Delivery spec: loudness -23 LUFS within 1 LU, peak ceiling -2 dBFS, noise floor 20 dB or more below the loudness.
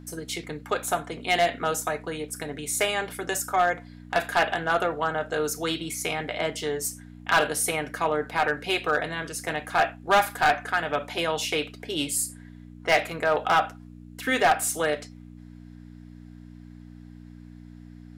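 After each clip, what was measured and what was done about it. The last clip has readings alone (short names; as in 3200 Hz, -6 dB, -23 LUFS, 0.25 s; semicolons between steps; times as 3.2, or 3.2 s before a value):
clipped 0.5%; flat tops at -14.0 dBFS; hum 60 Hz; harmonics up to 300 Hz; hum level -43 dBFS; loudness -26.0 LUFS; peak -14.0 dBFS; loudness target -23.0 LUFS
-> clip repair -14 dBFS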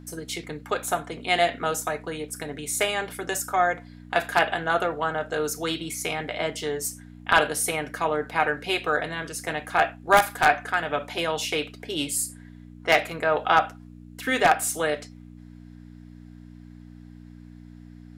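clipped 0.0%; hum 60 Hz; harmonics up to 300 Hz; hum level -43 dBFS
-> de-hum 60 Hz, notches 5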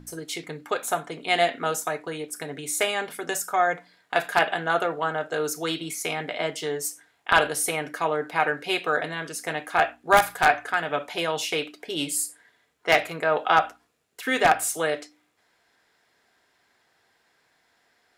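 hum none; loudness -25.5 LUFS; peak -5.0 dBFS; loudness target -23.0 LUFS
-> gain +2.5 dB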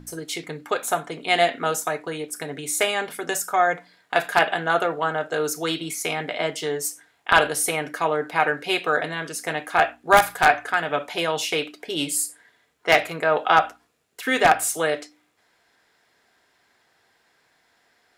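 loudness -23.0 LUFS; peak -2.5 dBFS; noise floor -65 dBFS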